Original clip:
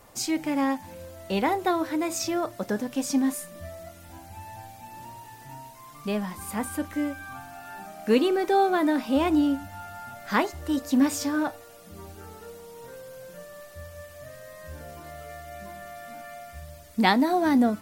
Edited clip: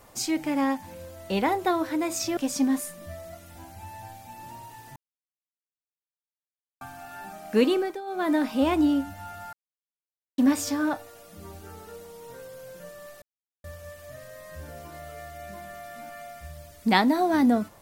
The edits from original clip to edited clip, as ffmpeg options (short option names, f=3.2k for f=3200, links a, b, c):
-filter_complex "[0:a]asplit=9[a][b][c][d][e][f][g][h][i];[a]atrim=end=2.372[j];[b]atrim=start=2.908:end=5.5,asetpts=PTS-STARTPTS,afade=t=out:st=2.588:d=0.004:c=hsin[k];[c]atrim=start=5.5:end=7.35,asetpts=PTS-STARTPTS,volume=0[l];[d]atrim=start=7.35:end=8.55,asetpts=PTS-STARTPTS,afade=t=in:d=0.004:c=hsin,afade=t=out:st=0.94:d=0.26:silence=0.125893[m];[e]atrim=start=8.55:end=8.6,asetpts=PTS-STARTPTS,volume=-18dB[n];[f]atrim=start=8.6:end=10.07,asetpts=PTS-STARTPTS,afade=t=in:d=0.26:silence=0.125893,afade=t=out:st=1.466:d=0.004:c=hsin[o];[g]atrim=start=10.07:end=10.92,asetpts=PTS-STARTPTS,volume=0[p];[h]atrim=start=10.92:end=13.76,asetpts=PTS-STARTPTS,afade=t=in:d=0.004:c=hsin,afade=t=out:st=2.836:d=0.004:c=hsin,apad=pad_dur=0.42[q];[i]atrim=start=13.76,asetpts=PTS-STARTPTS,afade=t=in:d=0.004:c=hsin[r];[k][l][m][n][o][p][q][r]concat=n=8:v=0:a=1[s];[j][s]acrossfade=d=0.004:c1=hsin:c2=hsin"